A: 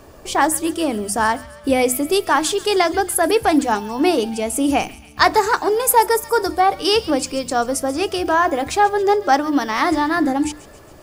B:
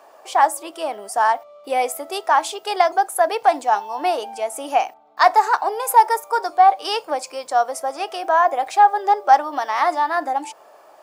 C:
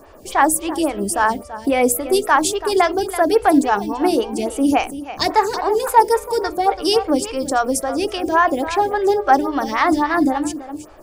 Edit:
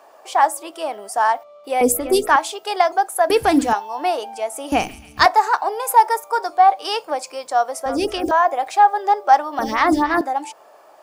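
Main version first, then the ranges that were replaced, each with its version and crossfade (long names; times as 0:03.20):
B
0:01.81–0:02.36: punch in from C
0:03.30–0:03.73: punch in from A
0:04.72–0:05.26: punch in from A
0:07.86–0:08.31: punch in from C
0:09.59–0:10.21: punch in from C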